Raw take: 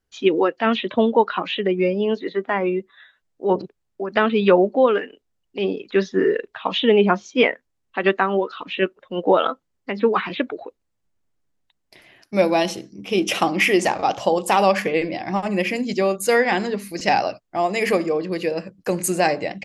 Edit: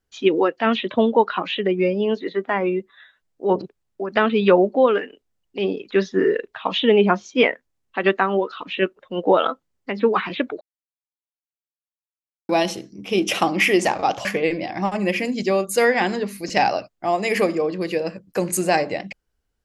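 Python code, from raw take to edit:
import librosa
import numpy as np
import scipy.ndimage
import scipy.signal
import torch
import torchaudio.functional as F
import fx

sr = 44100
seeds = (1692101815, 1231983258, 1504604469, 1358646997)

y = fx.edit(x, sr, fx.silence(start_s=10.61, length_s=1.88),
    fx.cut(start_s=14.25, length_s=0.51), tone=tone)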